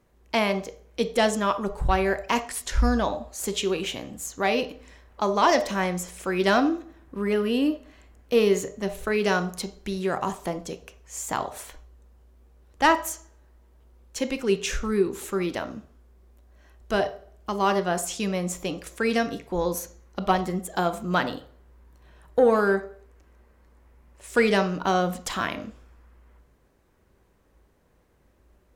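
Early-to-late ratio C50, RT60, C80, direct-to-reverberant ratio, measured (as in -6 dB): 13.0 dB, 0.45 s, 18.0 dB, 9.0 dB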